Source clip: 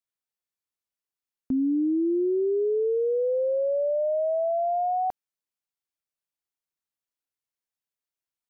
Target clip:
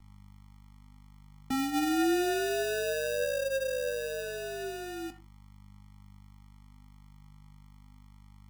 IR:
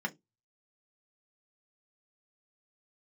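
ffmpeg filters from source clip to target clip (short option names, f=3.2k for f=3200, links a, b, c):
-filter_complex "[0:a]aeval=exprs='val(0)+0.00447*(sin(2*PI*50*n/s)+sin(2*PI*2*50*n/s)/2+sin(2*PI*3*50*n/s)/3+sin(2*PI*4*50*n/s)/4+sin(2*PI*5*50*n/s)/5)':c=same,acrossover=split=190|520[a][b][c];[c]acompressor=threshold=-45dB:ratio=4[d];[a][b][d]amix=inputs=3:normalize=0,bandreject=f=56.85:t=h:w=4,bandreject=f=113.7:t=h:w=4,bandreject=f=170.55:t=h:w=4,bandreject=f=227.4:t=h:w=4,bandreject=f=284.25:t=h:w=4,acrusher=samples=41:mix=1:aa=0.000001,flanger=delay=9.4:depth=4.2:regen=68:speed=0.34:shape=triangular,asplit=2[e][f];[1:a]atrim=start_sample=2205,adelay=72[g];[f][g]afir=irnorm=-1:irlink=0,volume=-20.5dB[h];[e][h]amix=inputs=2:normalize=0"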